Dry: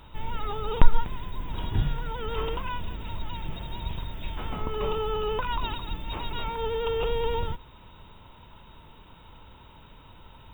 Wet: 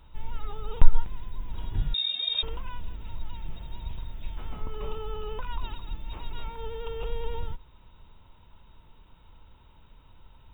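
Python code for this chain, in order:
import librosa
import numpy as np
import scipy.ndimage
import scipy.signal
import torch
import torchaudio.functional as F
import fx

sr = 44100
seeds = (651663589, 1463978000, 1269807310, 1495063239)

y = fx.low_shelf(x, sr, hz=61.0, db=12.0)
y = fx.freq_invert(y, sr, carrier_hz=3700, at=(1.94, 2.43))
y = y * 10.0 ** (-9.5 / 20.0)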